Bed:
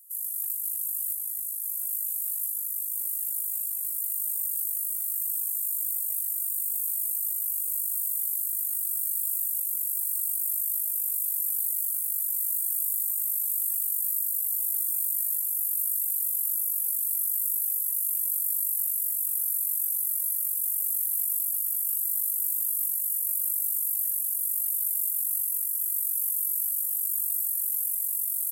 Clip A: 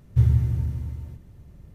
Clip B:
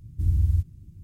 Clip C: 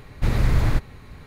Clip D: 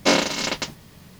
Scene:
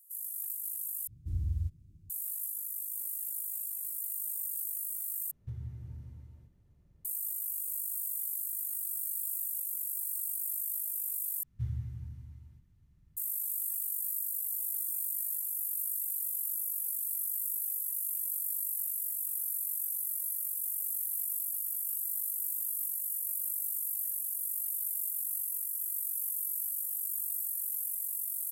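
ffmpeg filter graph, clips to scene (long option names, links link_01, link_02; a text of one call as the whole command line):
ffmpeg -i bed.wav -i cue0.wav -i cue1.wav -filter_complex "[1:a]asplit=2[link_01][link_02];[0:a]volume=-7dB[link_03];[link_01]alimiter=limit=-15dB:level=0:latency=1:release=391[link_04];[link_02]equalizer=frequency=520:width=1.1:gain=-14.5[link_05];[link_03]asplit=4[link_06][link_07][link_08][link_09];[link_06]atrim=end=1.074[link_10];[2:a]atrim=end=1.03,asetpts=PTS-STARTPTS,volume=-11dB[link_11];[link_07]atrim=start=2.096:end=5.314[link_12];[link_04]atrim=end=1.74,asetpts=PTS-STARTPTS,volume=-17.5dB[link_13];[link_08]atrim=start=7.046:end=11.434[link_14];[link_05]atrim=end=1.74,asetpts=PTS-STARTPTS,volume=-16.5dB[link_15];[link_09]atrim=start=13.166[link_16];[link_10][link_11]acrossfade=duration=0.004:curve1=hsin:curve2=hsin[link_17];[link_17][link_12]acrossfade=duration=0.004:curve1=hsin:curve2=hsin[link_18];[link_18][link_13]acrossfade=duration=0.004:curve1=hsin:curve2=hsin[link_19];[link_19][link_14]acrossfade=duration=0.004:curve1=hsin:curve2=hsin[link_20];[link_20][link_15]acrossfade=duration=0.004:curve1=hsin:curve2=hsin[link_21];[link_21][link_16]acrossfade=duration=0.004:curve1=hsin:curve2=hsin" out.wav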